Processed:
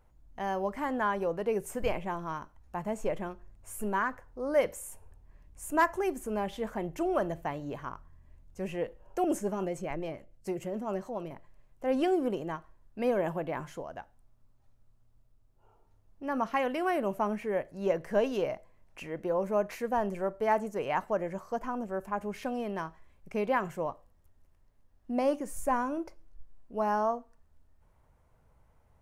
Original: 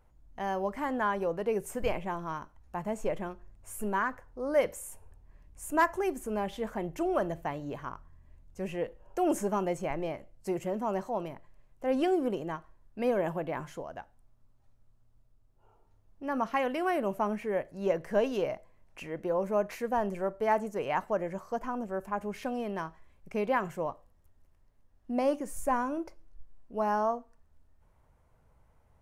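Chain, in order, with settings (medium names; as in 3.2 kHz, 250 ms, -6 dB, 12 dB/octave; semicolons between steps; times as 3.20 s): 9.24–11.31 s: rotary cabinet horn 7 Hz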